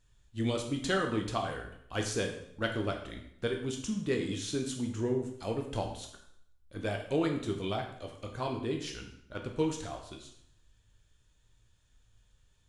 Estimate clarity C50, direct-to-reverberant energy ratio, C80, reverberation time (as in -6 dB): 6.5 dB, 2.5 dB, 10.0 dB, 0.70 s